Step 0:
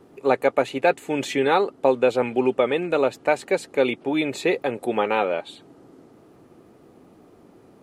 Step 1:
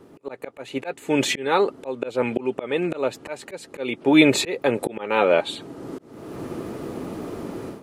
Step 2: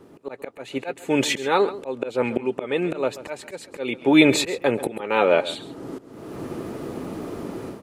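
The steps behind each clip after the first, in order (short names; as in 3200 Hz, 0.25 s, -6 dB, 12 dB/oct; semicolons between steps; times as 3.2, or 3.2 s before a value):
notch 750 Hz, Q 12; AGC gain up to 16.5 dB; auto swell 0.453 s; gain +2.5 dB
echo 0.136 s -16 dB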